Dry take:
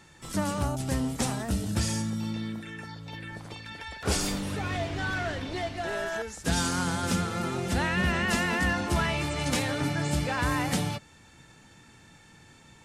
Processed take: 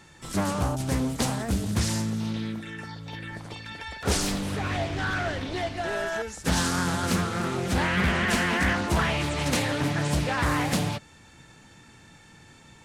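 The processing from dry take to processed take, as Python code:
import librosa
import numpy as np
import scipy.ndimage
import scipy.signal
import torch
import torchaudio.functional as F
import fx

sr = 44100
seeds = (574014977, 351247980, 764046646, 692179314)

y = fx.doppler_dist(x, sr, depth_ms=0.5)
y = y * 10.0 ** (2.5 / 20.0)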